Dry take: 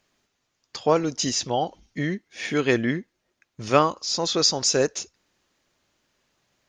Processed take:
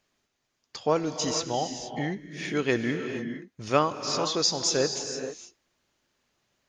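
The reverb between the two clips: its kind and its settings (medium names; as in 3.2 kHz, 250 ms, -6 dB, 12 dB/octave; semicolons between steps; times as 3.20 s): gated-style reverb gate 490 ms rising, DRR 7 dB; trim -4.5 dB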